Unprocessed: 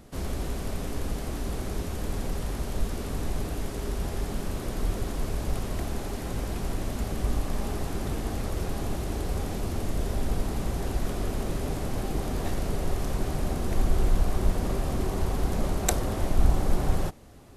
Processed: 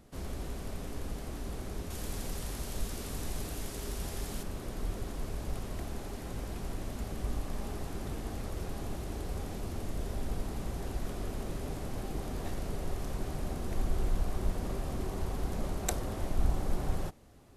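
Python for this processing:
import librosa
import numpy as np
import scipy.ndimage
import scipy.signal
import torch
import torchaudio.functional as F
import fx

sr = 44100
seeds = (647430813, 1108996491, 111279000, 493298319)

y = fx.high_shelf(x, sr, hz=2700.0, db=9.0, at=(1.9, 4.43))
y = F.gain(torch.from_numpy(y), -7.5).numpy()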